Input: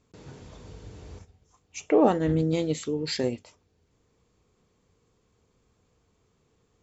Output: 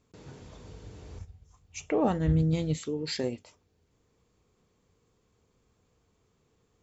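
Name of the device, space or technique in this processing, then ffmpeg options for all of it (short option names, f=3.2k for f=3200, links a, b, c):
parallel compression: -filter_complex "[0:a]asplit=3[a][b][c];[a]afade=t=out:st=1.16:d=0.02[d];[b]asubboost=boost=8.5:cutoff=140,afade=t=in:st=1.16:d=0.02,afade=t=out:st=2.76:d=0.02[e];[c]afade=t=in:st=2.76:d=0.02[f];[d][e][f]amix=inputs=3:normalize=0,asplit=2[g][h];[h]acompressor=threshold=-31dB:ratio=6,volume=-6dB[i];[g][i]amix=inputs=2:normalize=0,volume=-5.5dB"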